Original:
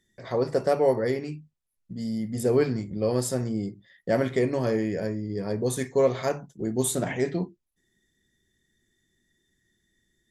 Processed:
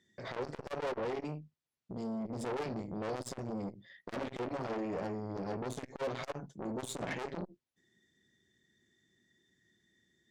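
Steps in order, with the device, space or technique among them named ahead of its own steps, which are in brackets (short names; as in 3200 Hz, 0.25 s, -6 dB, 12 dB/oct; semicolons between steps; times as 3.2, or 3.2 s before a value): valve radio (BPF 110–5900 Hz; tube stage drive 32 dB, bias 0.4; core saturation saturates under 470 Hz); gain +1.5 dB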